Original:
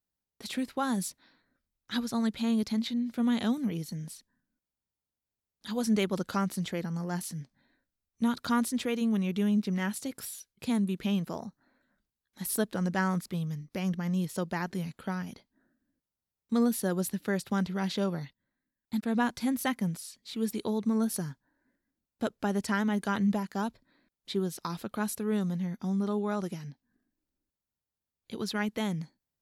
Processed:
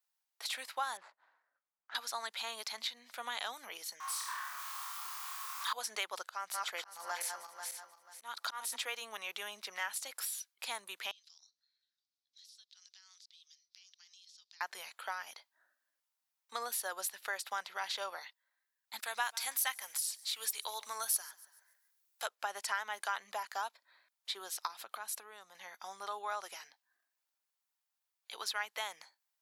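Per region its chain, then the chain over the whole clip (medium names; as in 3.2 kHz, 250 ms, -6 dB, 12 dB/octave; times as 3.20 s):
0.97–1.95 s: median filter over 15 samples + tape spacing loss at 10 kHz 32 dB
4.00–5.73 s: jump at every zero crossing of -43 dBFS + resonant high-pass 1.1 kHz, resonance Q 8.8 + flutter echo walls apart 4.6 m, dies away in 0.55 s
6.25–8.76 s: backward echo that repeats 244 ms, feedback 51%, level -6 dB + slow attack 267 ms
11.11–14.61 s: Butterworth band-pass 4.6 kHz, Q 1.9 + compression 10:1, threshold -59 dBFS
18.99–22.26 s: tilt EQ +3 dB/octave + modulated delay 142 ms, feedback 37%, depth 91 cents, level -23.5 dB
24.67–25.55 s: bass shelf 210 Hz +11.5 dB + compression 5:1, threshold -35 dBFS
whole clip: high-pass 760 Hz 24 dB/octave; compression 2:1, threshold -41 dBFS; trim +4 dB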